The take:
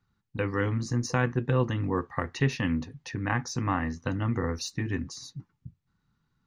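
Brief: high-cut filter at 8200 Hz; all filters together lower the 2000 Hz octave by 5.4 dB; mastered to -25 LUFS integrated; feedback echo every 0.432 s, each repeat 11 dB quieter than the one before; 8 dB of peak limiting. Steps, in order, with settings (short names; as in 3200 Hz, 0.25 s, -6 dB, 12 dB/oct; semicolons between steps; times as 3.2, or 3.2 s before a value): LPF 8200 Hz; bell 2000 Hz -7 dB; limiter -20.5 dBFS; feedback echo 0.432 s, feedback 28%, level -11 dB; gain +7.5 dB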